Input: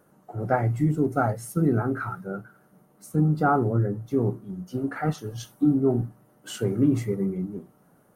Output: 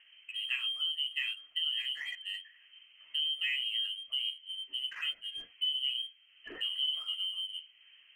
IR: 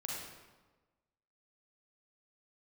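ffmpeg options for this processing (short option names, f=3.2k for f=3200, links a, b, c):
-filter_complex "[0:a]lowpass=f=2.8k:t=q:w=0.5098,lowpass=f=2.8k:t=q:w=0.6013,lowpass=f=2.8k:t=q:w=0.9,lowpass=f=2.8k:t=q:w=2.563,afreqshift=-3300,asplit=2[a][b];[b]aeval=exprs='sgn(val(0))*max(abs(val(0))-0.0158,0)':c=same,volume=-6dB[c];[a][c]amix=inputs=2:normalize=0,acompressor=threshold=-44dB:ratio=2"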